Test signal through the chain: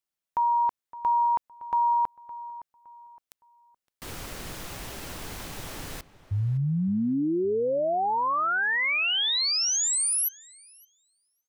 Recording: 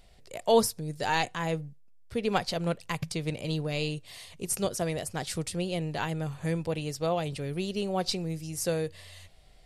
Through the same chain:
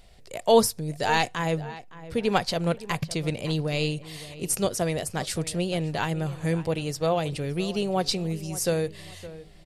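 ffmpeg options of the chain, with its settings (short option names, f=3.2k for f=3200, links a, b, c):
-filter_complex "[0:a]asplit=2[a][b];[b]adelay=564,lowpass=f=2.5k:p=1,volume=-16dB,asplit=2[c][d];[d]adelay=564,lowpass=f=2.5k:p=1,volume=0.33,asplit=2[e][f];[f]adelay=564,lowpass=f=2.5k:p=1,volume=0.33[g];[a][c][e][g]amix=inputs=4:normalize=0,volume=4dB"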